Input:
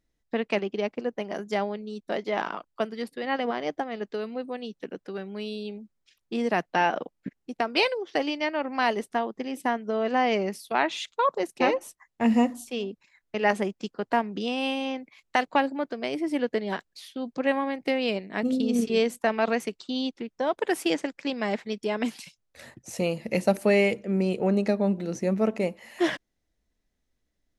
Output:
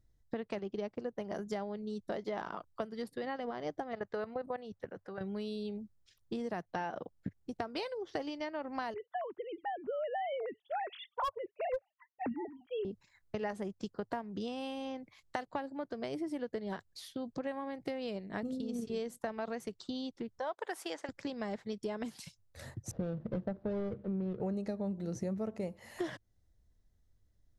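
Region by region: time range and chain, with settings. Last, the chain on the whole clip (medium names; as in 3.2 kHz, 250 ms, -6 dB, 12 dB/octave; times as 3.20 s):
3.93–5.21 s: high-order bell 1.1 kHz +9.5 dB 2.4 oct + level held to a coarse grid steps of 14 dB
8.94–12.85 s: formants replaced by sine waves + overload inside the chain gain 13.5 dB
20.39–21.09 s: high-pass 840 Hz + tilt EQ -2 dB/octave
22.91–24.41 s: median filter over 41 samples + distance through air 320 m
whole clip: bass shelf 160 Hz +10.5 dB; compression 6:1, threshold -31 dBFS; fifteen-band graphic EQ 100 Hz +10 dB, 250 Hz -4 dB, 2.5 kHz -8 dB; trim -2.5 dB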